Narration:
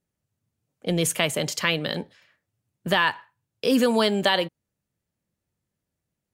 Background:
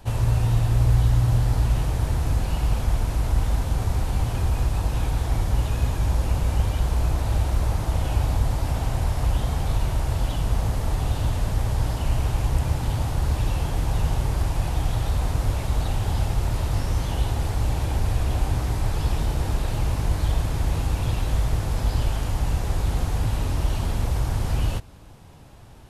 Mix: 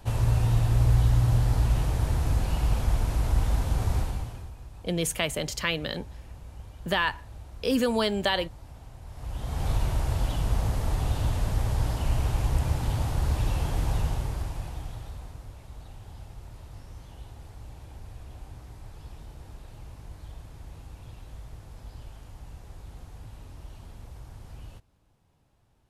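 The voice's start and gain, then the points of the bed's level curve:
4.00 s, -4.5 dB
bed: 3.99 s -2.5 dB
4.56 s -21.5 dB
9.02 s -21.5 dB
9.66 s -3 dB
13.91 s -3 dB
15.49 s -20.5 dB

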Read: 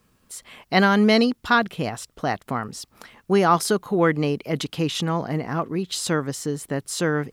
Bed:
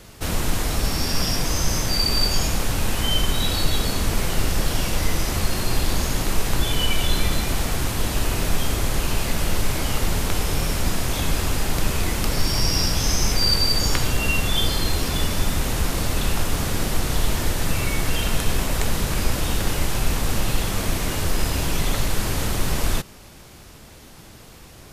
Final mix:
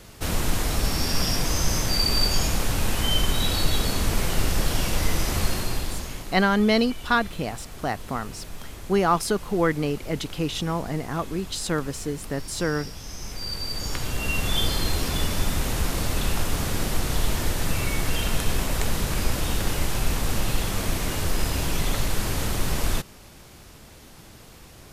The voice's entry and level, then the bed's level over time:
5.60 s, -3.0 dB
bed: 5.48 s -1.5 dB
6.46 s -17 dB
13.06 s -17 dB
14.53 s -2.5 dB

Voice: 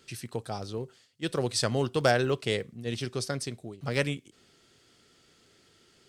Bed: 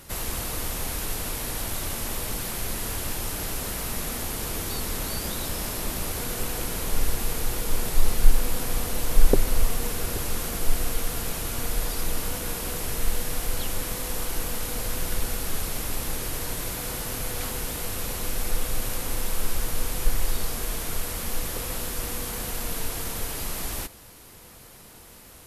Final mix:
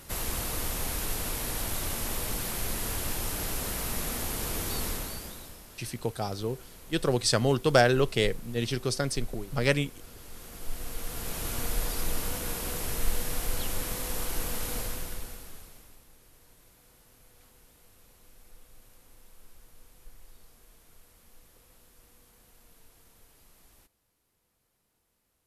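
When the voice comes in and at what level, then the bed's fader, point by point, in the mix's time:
5.70 s, +3.0 dB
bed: 4.87 s -2 dB
5.67 s -20 dB
10.15 s -20 dB
11.47 s -3 dB
14.77 s -3 dB
16.07 s -28 dB

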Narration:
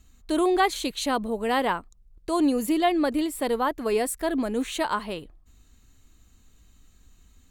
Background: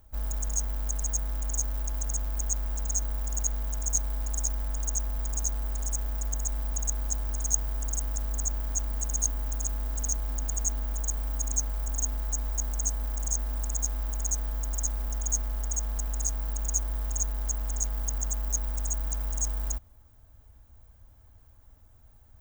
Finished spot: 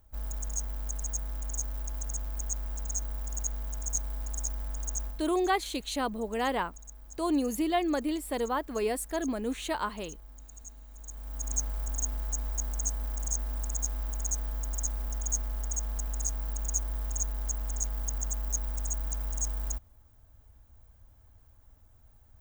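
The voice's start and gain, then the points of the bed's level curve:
4.90 s, -5.5 dB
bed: 5.06 s -4.5 dB
5.31 s -18.5 dB
10.91 s -18.5 dB
11.53 s -2.5 dB

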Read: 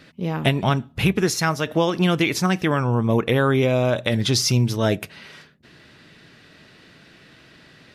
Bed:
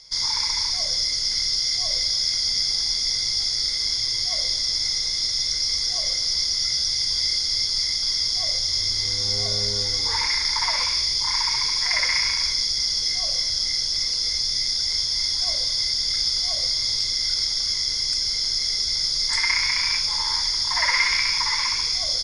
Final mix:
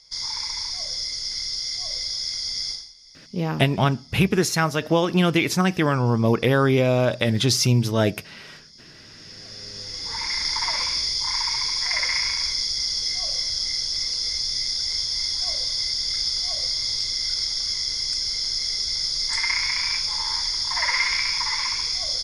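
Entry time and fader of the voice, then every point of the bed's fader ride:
3.15 s, 0.0 dB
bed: 2.71 s -5.5 dB
2.94 s -26 dB
8.93 s -26 dB
10.43 s -2 dB

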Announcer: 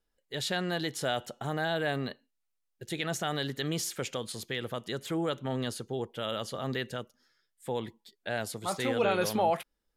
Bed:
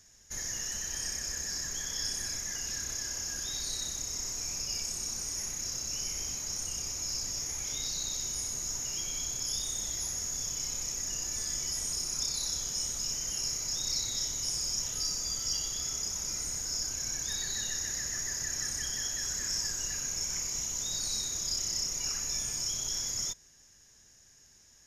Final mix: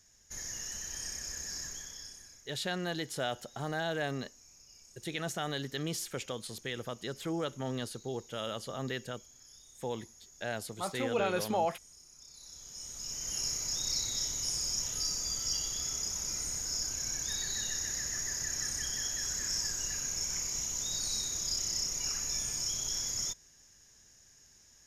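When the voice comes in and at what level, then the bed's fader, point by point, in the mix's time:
2.15 s, -3.5 dB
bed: 1.65 s -4.5 dB
2.47 s -22.5 dB
12.2 s -22.5 dB
13.37 s -1 dB

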